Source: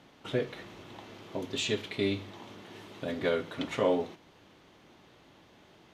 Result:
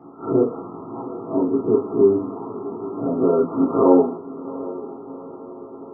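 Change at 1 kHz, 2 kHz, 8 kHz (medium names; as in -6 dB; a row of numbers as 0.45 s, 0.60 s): +13.0 dB, under -15 dB, under -30 dB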